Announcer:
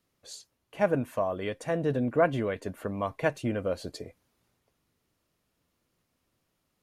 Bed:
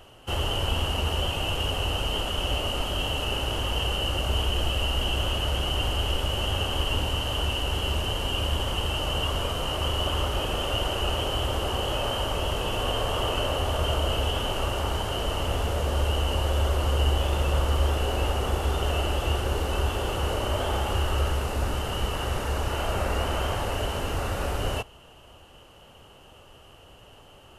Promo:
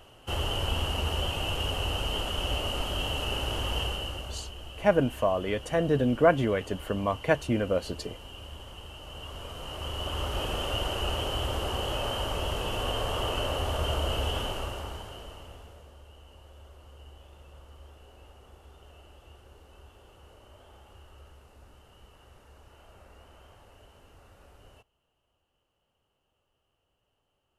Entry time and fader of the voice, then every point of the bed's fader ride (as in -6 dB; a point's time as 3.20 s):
4.05 s, +3.0 dB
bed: 3.80 s -3 dB
4.55 s -17 dB
9.00 s -17 dB
10.42 s -3.5 dB
14.40 s -3.5 dB
16.00 s -27 dB